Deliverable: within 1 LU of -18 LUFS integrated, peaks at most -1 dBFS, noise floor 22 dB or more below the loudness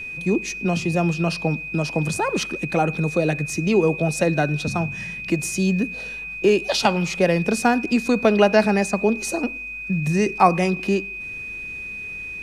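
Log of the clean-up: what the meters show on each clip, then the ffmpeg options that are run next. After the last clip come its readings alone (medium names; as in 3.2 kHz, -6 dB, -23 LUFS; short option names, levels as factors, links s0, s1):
steady tone 2.5 kHz; tone level -30 dBFS; loudness -21.5 LUFS; peak level -2.0 dBFS; loudness target -18.0 LUFS
-> -af "bandreject=f=2500:w=30"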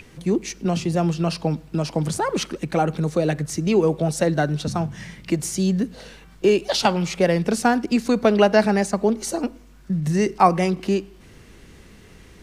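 steady tone not found; loudness -22.0 LUFS; peak level -2.0 dBFS; loudness target -18.0 LUFS
-> -af "volume=1.58,alimiter=limit=0.891:level=0:latency=1"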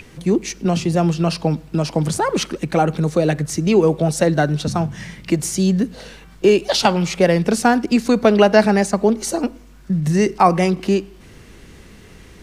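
loudness -18.0 LUFS; peak level -1.0 dBFS; noise floor -44 dBFS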